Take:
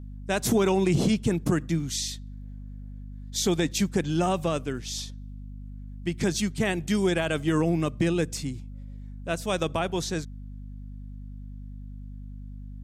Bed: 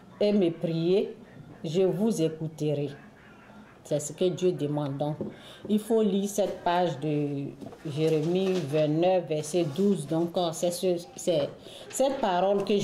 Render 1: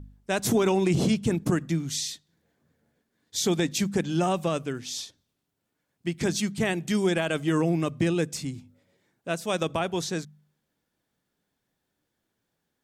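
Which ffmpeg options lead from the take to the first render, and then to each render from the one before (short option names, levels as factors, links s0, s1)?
-af "bandreject=f=50:t=h:w=4,bandreject=f=100:t=h:w=4,bandreject=f=150:t=h:w=4,bandreject=f=200:t=h:w=4,bandreject=f=250:t=h:w=4"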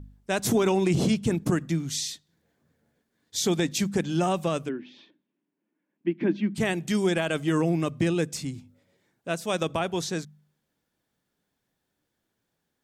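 -filter_complex "[0:a]asplit=3[s0][s1][s2];[s0]afade=t=out:st=4.68:d=0.02[s3];[s1]highpass=f=200:w=0.5412,highpass=f=200:w=1.3066,equalizer=f=200:t=q:w=4:g=5,equalizer=f=320:t=q:w=4:g=9,equalizer=f=470:t=q:w=4:g=-5,equalizer=f=740:t=q:w=4:g=-8,equalizer=f=1300:t=q:w=4:g=-9,equalizer=f=2000:t=q:w=4:g=-3,lowpass=f=2400:w=0.5412,lowpass=f=2400:w=1.3066,afade=t=in:st=4.68:d=0.02,afade=t=out:st=6.54:d=0.02[s4];[s2]afade=t=in:st=6.54:d=0.02[s5];[s3][s4][s5]amix=inputs=3:normalize=0"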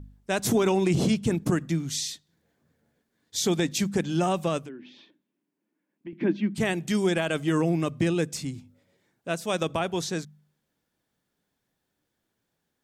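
-filter_complex "[0:a]asettb=1/sr,asplit=3[s0][s1][s2];[s0]atrim=end=4.594[s3];[s1]atrim=start=4.59:end=6.13,asetpts=PTS-STARTPTS,afade=t=in:d=0.004:c=qsin,afade=t=out:st=1.536:d=0.004:c=qsin,acompressor=threshold=0.00891:ratio=2.5:attack=3.2:release=140:knee=1:detection=peak[s4];[s2]atrim=start=6.126[s5];[s3][s4]acrossfade=d=0.004:c1=hsin:c2=qsin[s6];[s6][s5]acrossfade=d=0.004:c1=qsin:c2=hsin"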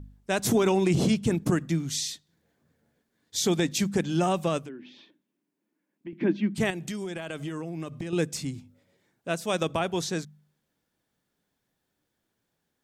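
-filter_complex "[0:a]asettb=1/sr,asplit=3[s0][s1][s2];[s0]atrim=end=6.704[s3];[s1]atrim=start=6.7:end=8.13,asetpts=PTS-STARTPTS,afade=t=in:d=0.004:c=qsin,afade=t=out:st=1.426:d=0.004:c=qsin,acompressor=threshold=0.0316:ratio=12:attack=3.2:release=140:knee=1:detection=peak[s4];[s2]atrim=start=8.126[s5];[s3][s4]acrossfade=d=0.004:c1=hsin:c2=qsin[s6];[s6][s5]acrossfade=d=0.004:c1=qsin:c2=hsin"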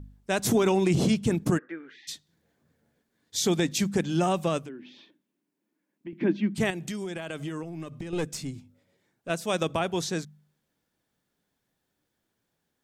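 -filter_complex "[0:a]asplit=3[s0][s1][s2];[s0]afade=t=out:st=1.57:d=0.02[s3];[s1]highpass=f=400:w=0.5412,highpass=f=400:w=1.3066,equalizer=f=430:t=q:w=4:g=5,equalizer=f=680:t=q:w=4:g=-10,equalizer=f=980:t=q:w=4:g=-7,equalizer=f=1600:t=q:w=4:g=9,lowpass=f=2000:w=0.5412,lowpass=f=2000:w=1.3066,afade=t=in:st=1.57:d=0.02,afade=t=out:st=2.07:d=0.02[s4];[s2]afade=t=in:st=2.07:d=0.02[s5];[s3][s4][s5]amix=inputs=3:normalize=0,asettb=1/sr,asplit=3[s6][s7][s8];[s6]atrim=end=7.634[s9];[s7]atrim=start=7.63:end=9.3,asetpts=PTS-STARTPTS,afade=t=in:d=0.004:c=qsin,afade=t=out:st=1.666:d=0.004:c=qsin,aeval=exprs='(tanh(7.94*val(0)+0.5)-tanh(0.5))/7.94':c=same[s10];[s8]atrim=start=9.296[s11];[s9][s10]acrossfade=d=0.004:c1=hsin:c2=qsin[s12];[s12][s11]acrossfade=d=0.004:c1=qsin:c2=hsin"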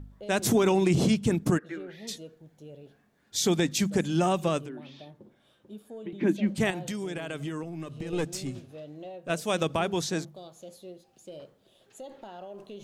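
-filter_complex "[1:a]volume=0.119[s0];[0:a][s0]amix=inputs=2:normalize=0"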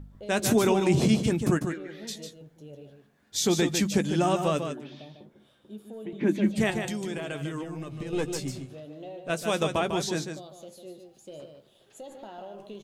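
-filter_complex "[0:a]asplit=2[s0][s1];[s1]adelay=14,volume=0.251[s2];[s0][s2]amix=inputs=2:normalize=0,aecho=1:1:149:0.447"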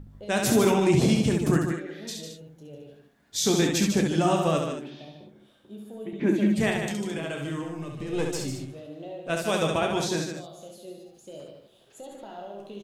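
-af "aecho=1:1:30|68:0.335|0.596"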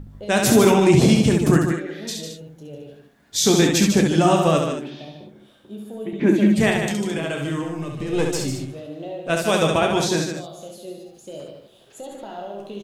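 -af "volume=2.11"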